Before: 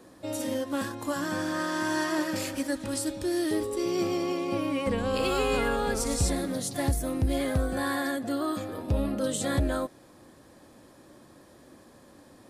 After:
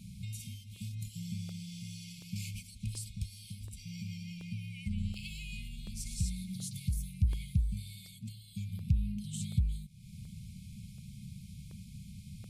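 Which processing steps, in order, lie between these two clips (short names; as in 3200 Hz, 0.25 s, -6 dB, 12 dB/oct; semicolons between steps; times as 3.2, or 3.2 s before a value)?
5.12–7.23 low shelf 190 Hz -9 dB; compressor 4:1, threshold -43 dBFS, peak gain reduction 18 dB; brick-wall FIR band-stop 210–2100 Hz; tilt shelf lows +7 dB, about 800 Hz; crackling interface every 0.73 s, samples 64, repeat, from 0.76; gain +9 dB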